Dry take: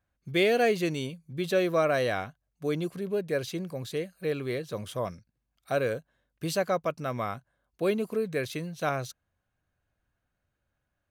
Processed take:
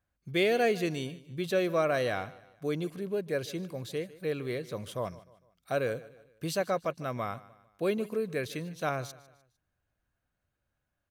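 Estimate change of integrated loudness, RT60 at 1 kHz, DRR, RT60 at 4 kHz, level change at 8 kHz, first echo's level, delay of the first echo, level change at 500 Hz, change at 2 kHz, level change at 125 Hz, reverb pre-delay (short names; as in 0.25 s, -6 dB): -2.5 dB, none, none, none, -2.5 dB, -19.0 dB, 0.151 s, -2.5 dB, -2.5 dB, -2.5 dB, none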